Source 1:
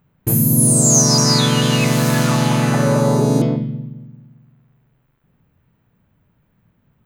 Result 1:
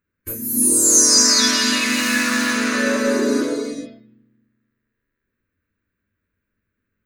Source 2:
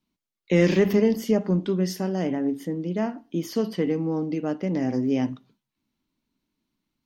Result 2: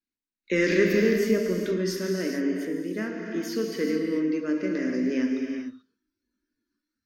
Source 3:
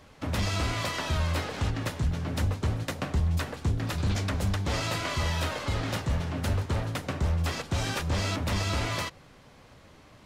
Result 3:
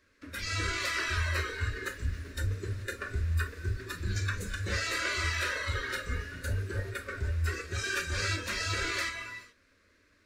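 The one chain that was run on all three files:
parametric band 2,200 Hz +6.5 dB 2.9 octaves
phaser with its sweep stopped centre 330 Hz, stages 4
reverb whose tail is shaped and stops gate 460 ms flat, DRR 1 dB
noise reduction from a noise print of the clip's start 12 dB
thirty-one-band graphic EQ 100 Hz +7 dB, 1,600 Hz +7 dB, 3,150 Hz −9 dB
level −3 dB

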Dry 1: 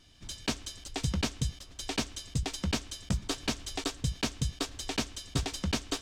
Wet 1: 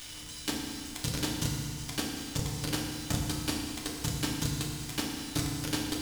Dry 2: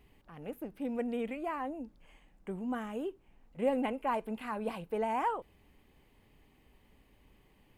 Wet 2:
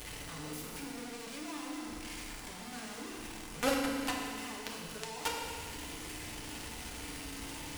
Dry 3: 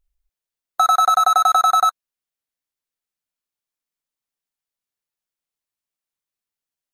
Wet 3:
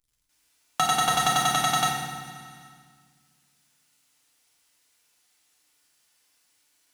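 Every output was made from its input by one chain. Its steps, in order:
linear delta modulator 64 kbit/s, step −24.5 dBFS
power curve on the samples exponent 3
feedback delay network reverb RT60 1.6 s, low-frequency decay 1.5×, high-frequency decay 0.85×, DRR −2.5 dB
one half of a high-frequency compander encoder only

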